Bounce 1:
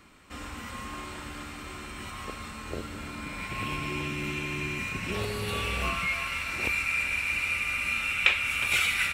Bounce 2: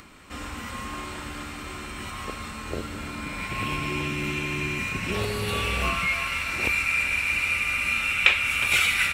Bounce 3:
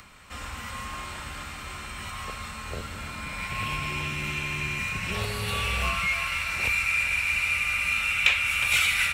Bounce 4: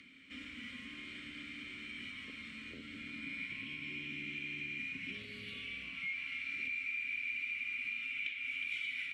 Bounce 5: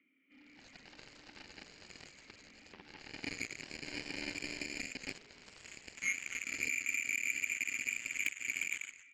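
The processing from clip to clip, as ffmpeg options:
-af "acompressor=mode=upward:threshold=-48dB:ratio=2.5,volume=4dB"
-filter_complex "[0:a]equalizer=f=310:w=1.5:g=-12,acrossover=split=170|2500[a][b][c];[b]asoftclip=type=tanh:threshold=-22.5dB[d];[a][d][c]amix=inputs=3:normalize=0"
-filter_complex "[0:a]acompressor=threshold=-33dB:ratio=10,asplit=3[a][b][c];[a]bandpass=f=270:t=q:w=8,volume=0dB[d];[b]bandpass=f=2.29k:t=q:w=8,volume=-6dB[e];[c]bandpass=f=3.01k:t=q:w=8,volume=-9dB[f];[d][e][f]amix=inputs=3:normalize=0,volume=5.5dB"
-af "highpass=300,equalizer=f=310:t=q:w=4:g=6,equalizer=f=1k:t=q:w=4:g=-9,equalizer=f=1.6k:t=q:w=4:g=-10,lowpass=f=2.2k:w=0.5412,lowpass=f=2.2k:w=1.3066,dynaudnorm=f=140:g=7:m=11.5dB,aeval=exprs='0.1*(cos(1*acos(clip(val(0)/0.1,-1,1)))-cos(1*PI/2))+0.0178*(cos(7*acos(clip(val(0)/0.1,-1,1)))-cos(7*PI/2))':c=same"

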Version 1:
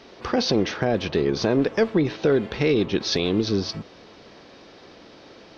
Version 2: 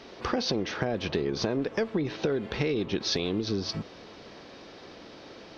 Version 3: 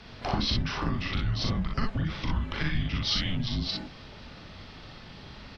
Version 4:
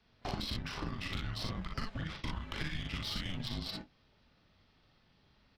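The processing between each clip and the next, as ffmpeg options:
-af "acompressor=threshold=-25dB:ratio=6"
-af "highpass=270,aecho=1:1:40|60:0.631|0.631,afreqshift=-460"
-filter_complex "[0:a]agate=range=-17dB:threshold=-35dB:ratio=16:detection=peak,acrossover=split=530|2500[a][b][c];[a]acompressor=threshold=-34dB:ratio=4[d];[b]acompressor=threshold=-42dB:ratio=4[e];[c]acompressor=threshold=-39dB:ratio=4[f];[d][e][f]amix=inputs=3:normalize=0,asplit=2[g][h];[h]acrusher=bits=4:mix=0:aa=0.5,volume=-7dB[i];[g][i]amix=inputs=2:normalize=0,volume=-5.5dB"

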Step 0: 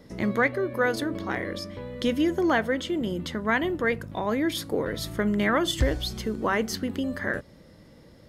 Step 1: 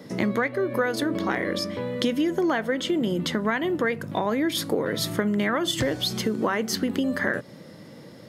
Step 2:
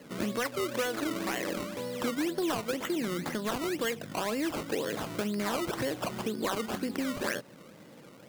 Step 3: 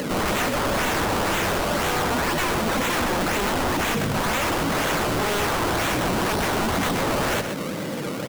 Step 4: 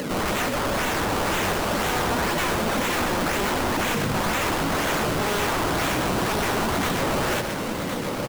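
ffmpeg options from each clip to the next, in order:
-af "highpass=f=120:w=0.5412,highpass=f=120:w=1.3066,acompressor=threshold=-29dB:ratio=6,volume=8dB"
-af "acrusher=samples=18:mix=1:aa=0.000001:lfo=1:lforange=18:lforate=2,lowshelf=f=120:g=-11.5,asoftclip=type=tanh:threshold=-15.5dB,volume=-5dB"
-af "aeval=exprs='0.0944*sin(PI/2*8.91*val(0)/0.0944)':c=same,aecho=1:1:124:0.376,acompressor=mode=upward:threshold=-29dB:ratio=2.5"
-af "aecho=1:1:1063:0.447,volume=-1.5dB"

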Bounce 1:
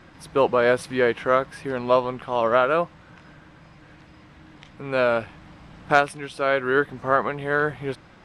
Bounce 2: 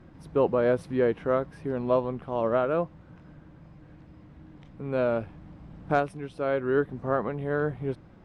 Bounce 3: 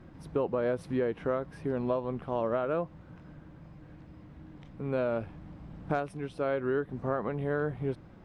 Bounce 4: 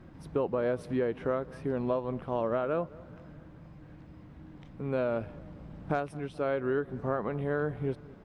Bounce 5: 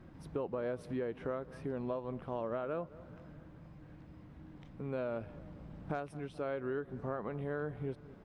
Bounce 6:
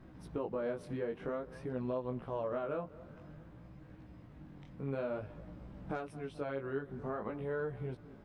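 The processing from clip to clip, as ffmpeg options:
-af "tiltshelf=f=790:g=8.5,volume=-7dB"
-af "acompressor=threshold=-26dB:ratio=6"
-filter_complex "[0:a]asplit=2[a][b];[b]adelay=214,lowpass=f=2k:p=1,volume=-21dB,asplit=2[c][d];[d]adelay=214,lowpass=f=2k:p=1,volume=0.54,asplit=2[e][f];[f]adelay=214,lowpass=f=2k:p=1,volume=0.54,asplit=2[g][h];[h]adelay=214,lowpass=f=2k:p=1,volume=0.54[i];[a][c][e][g][i]amix=inputs=5:normalize=0"
-af "acompressor=threshold=-37dB:ratio=1.5,volume=-3.5dB"
-af "flanger=delay=15.5:depth=6.5:speed=0.52,volume=3dB"

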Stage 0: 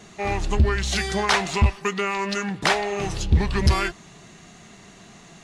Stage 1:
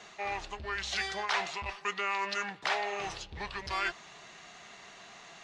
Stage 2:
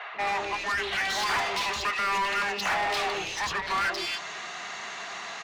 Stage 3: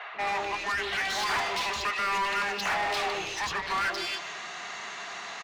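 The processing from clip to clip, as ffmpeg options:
-filter_complex "[0:a]areverse,acompressor=threshold=-27dB:ratio=6,areverse,acrossover=split=520 6200:gain=0.141 1 0.126[a][b][c];[a][b][c]amix=inputs=3:normalize=0"
-filter_complex "[0:a]acrossover=split=540|2900[a][b][c];[a]adelay=140[d];[c]adelay=270[e];[d][b][e]amix=inputs=3:normalize=0,asplit=2[f][g];[g]highpass=f=720:p=1,volume=24dB,asoftclip=type=tanh:threshold=-19.5dB[h];[f][h]amix=inputs=2:normalize=0,lowpass=f=3.7k:p=1,volume=-6dB"
-filter_complex "[0:a]asplit=2[a][b];[b]adelay=150,highpass=300,lowpass=3.4k,asoftclip=type=hard:threshold=-28dB,volume=-10dB[c];[a][c]amix=inputs=2:normalize=0,volume=-1.5dB"

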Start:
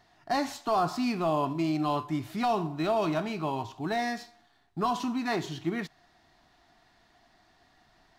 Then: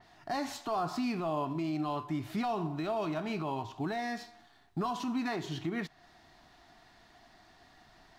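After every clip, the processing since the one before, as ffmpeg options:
-af "alimiter=level_in=5dB:limit=-24dB:level=0:latency=1:release=287,volume=-5dB,adynamicequalizer=threshold=0.00126:dfrequency=4200:dqfactor=0.7:tfrequency=4200:tqfactor=0.7:attack=5:release=100:ratio=0.375:range=2:mode=cutabove:tftype=highshelf,volume=3.5dB"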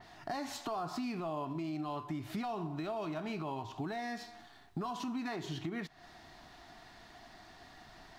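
-af "acompressor=threshold=-43dB:ratio=3,volume=4.5dB"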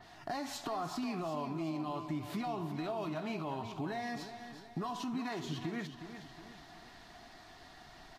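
-af "aecho=1:1:365|730|1095|1460|1825:0.316|0.145|0.0669|0.0308|0.0142" -ar 44100 -c:a libvorbis -b:a 48k

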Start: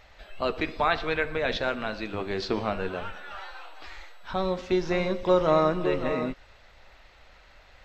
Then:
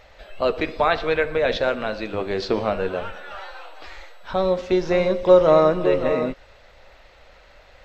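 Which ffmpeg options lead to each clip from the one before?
-af "equalizer=f=530:t=o:w=0.65:g=7,volume=3dB"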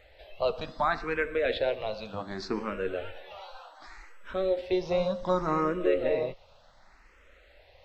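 -filter_complex "[0:a]asplit=2[a][b];[b]afreqshift=0.67[c];[a][c]amix=inputs=2:normalize=1,volume=-5dB"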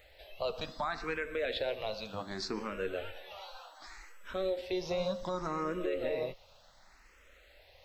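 -af "crystalizer=i=2.5:c=0,alimiter=limit=-20.5dB:level=0:latency=1:release=113,volume=-4dB"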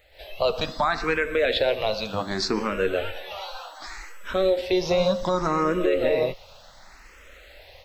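-af "dynaudnorm=f=110:g=3:m=12dB"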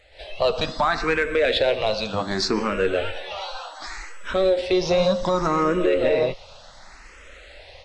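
-filter_complex "[0:a]asplit=2[a][b];[b]asoftclip=type=tanh:threshold=-22.5dB,volume=-6dB[c];[a][c]amix=inputs=2:normalize=0,aresample=22050,aresample=44100"

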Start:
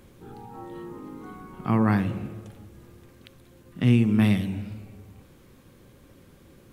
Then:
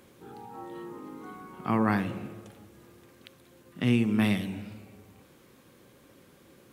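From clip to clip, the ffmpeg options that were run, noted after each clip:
-af "highpass=f=280:p=1"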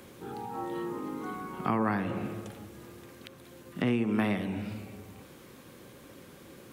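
-filter_complex "[0:a]acrossover=split=320|1900[a][b][c];[a]acompressor=threshold=-39dB:ratio=4[d];[b]acompressor=threshold=-34dB:ratio=4[e];[c]acompressor=threshold=-54dB:ratio=4[f];[d][e][f]amix=inputs=3:normalize=0,volume=6dB"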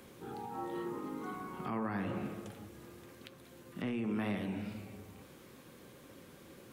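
-af "alimiter=limit=-24dB:level=0:latency=1:release=11,flanger=delay=4.3:depth=9.6:regen=-72:speed=0.86:shape=sinusoidal"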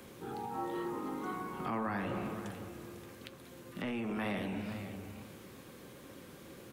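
-filter_complex "[0:a]acrossover=split=430|1600[a][b][c];[a]asoftclip=type=tanh:threshold=-39.5dB[d];[d][b][c]amix=inputs=3:normalize=0,aecho=1:1:500:0.251,volume=3dB"

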